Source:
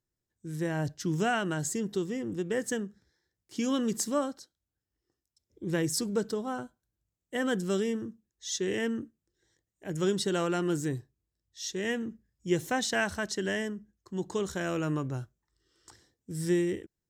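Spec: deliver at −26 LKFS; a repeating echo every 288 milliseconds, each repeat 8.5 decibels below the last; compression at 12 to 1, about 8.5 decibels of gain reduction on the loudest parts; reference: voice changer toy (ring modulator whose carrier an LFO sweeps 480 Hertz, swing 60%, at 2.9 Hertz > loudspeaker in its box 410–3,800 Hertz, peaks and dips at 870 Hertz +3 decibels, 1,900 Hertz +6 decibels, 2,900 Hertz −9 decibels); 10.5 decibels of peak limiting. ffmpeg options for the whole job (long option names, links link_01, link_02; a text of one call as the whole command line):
ffmpeg -i in.wav -af "acompressor=threshold=-30dB:ratio=12,alimiter=level_in=6.5dB:limit=-24dB:level=0:latency=1,volume=-6.5dB,aecho=1:1:288|576|864|1152:0.376|0.143|0.0543|0.0206,aeval=exprs='val(0)*sin(2*PI*480*n/s+480*0.6/2.9*sin(2*PI*2.9*n/s))':channel_layout=same,highpass=410,equalizer=frequency=870:width_type=q:width=4:gain=3,equalizer=frequency=1900:width_type=q:width=4:gain=6,equalizer=frequency=2900:width_type=q:width=4:gain=-9,lowpass=frequency=3800:width=0.5412,lowpass=frequency=3800:width=1.3066,volume=17dB" out.wav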